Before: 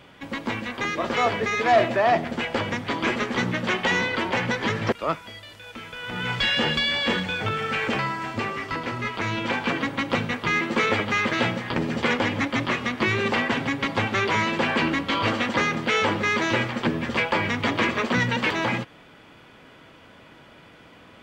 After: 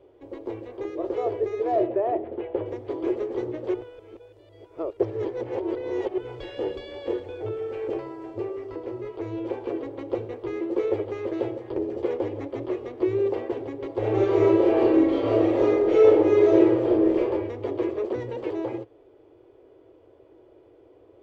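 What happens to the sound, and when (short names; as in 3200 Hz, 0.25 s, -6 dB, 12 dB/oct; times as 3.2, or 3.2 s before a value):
1.87–2.66 LPF 3300 Hz 24 dB/oct
3.74–6.18 reverse
13.98–17.18 reverb throw, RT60 0.99 s, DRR -7.5 dB
whole clip: EQ curve 110 Hz 0 dB, 190 Hz -26 dB, 360 Hz +14 dB, 1500 Hz -17 dB; gain -6.5 dB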